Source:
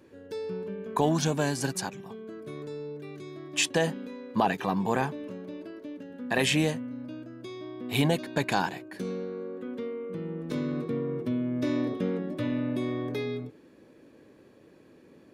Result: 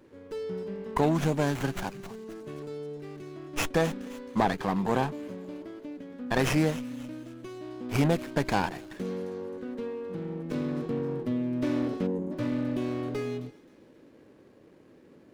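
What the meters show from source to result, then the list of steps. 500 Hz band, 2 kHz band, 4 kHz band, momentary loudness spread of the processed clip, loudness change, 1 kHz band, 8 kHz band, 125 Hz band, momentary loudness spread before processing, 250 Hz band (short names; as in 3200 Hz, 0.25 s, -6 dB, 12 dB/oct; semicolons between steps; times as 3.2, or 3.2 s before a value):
0.0 dB, -2.5 dB, -6.0 dB, 15 LU, -0.5 dB, 0.0 dB, -7.0 dB, +1.0 dB, 15 LU, +0.5 dB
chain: thin delay 0.265 s, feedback 39%, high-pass 4000 Hz, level -10 dB; spectral delete 12.07–12.31, 620–6200 Hz; running maximum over 9 samples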